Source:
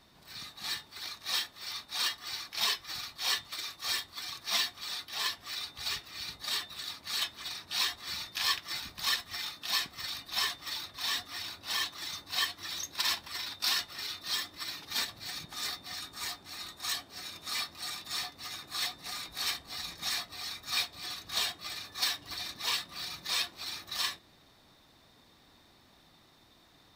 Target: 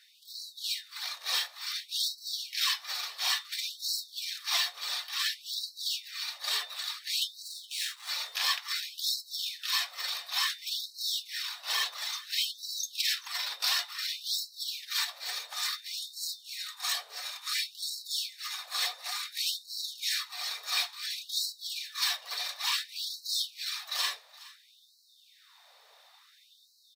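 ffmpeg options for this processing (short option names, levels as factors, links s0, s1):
-filter_complex "[0:a]asplit=2[s0][s1];[s1]alimiter=level_in=1.19:limit=0.0631:level=0:latency=1,volume=0.841,volume=1.12[s2];[s0][s2]amix=inputs=2:normalize=0,asettb=1/sr,asplit=3[s3][s4][s5];[s3]atrim=end=7.444[s6];[s4]atrim=start=7.44:end=8.09,asetpts=PTS-STARTPTS,afade=t=in:d=0.004:c=qsin,afade=t=out:st=0.646:d=0.004:c=qsin,aeval=exprs='max(val(0),0)':c=same[s7];[s5]atrim=start=8.086[s8];[s6][s7]acrossfade=d=0.004:c1=hsin:c2=qsin[s9];[s9][s8]acrossfade=d=0.004:c1=qsin:c2=hsin,aecho=1:1:419:0.1,afftfilt=real='re*gte(b*sr/1024,410*pow(3900/410,0.5+0.5*sin(2*PI*0.57*pts/sr)))':imag='im*gte(b*sr/1024,410*pow(3900/410,0.5+0.5*sin(2*PI*0.57*pts/sr)))':win_size=1024:overlap=0.75,volume=0.75"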